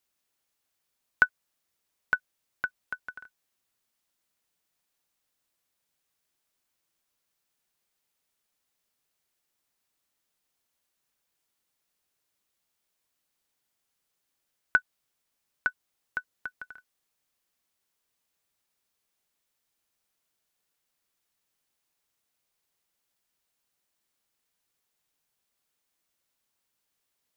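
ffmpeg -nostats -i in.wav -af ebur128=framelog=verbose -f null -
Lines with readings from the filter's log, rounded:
Integrated loudness:
  I:         -31.7 LUFS
  Threshold: -42.9 LUFS
Loudness range:
  LRA:        15.1 LU
  Threshold: -57.8 LUFS
  LRA low:   -49.2 LUFS
  LRA high:  -34.1 LUFS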